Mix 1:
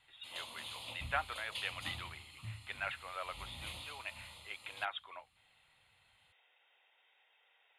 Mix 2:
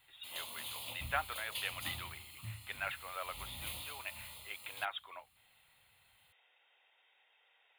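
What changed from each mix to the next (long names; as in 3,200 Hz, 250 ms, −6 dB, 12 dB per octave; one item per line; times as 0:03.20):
master: remove Bessel low-pass filter 7,200 Hz, order 4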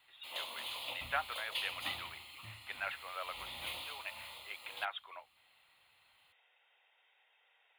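background +5.5 dB
master: add three-way crossover with the lows and the highs turned down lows −15 dB, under 320 Hz, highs −13 dB, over 4,500 Hz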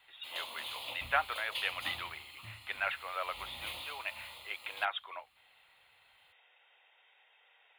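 speech +5.5 dB
master: add low-shelf EQ 85 Hz +6 dB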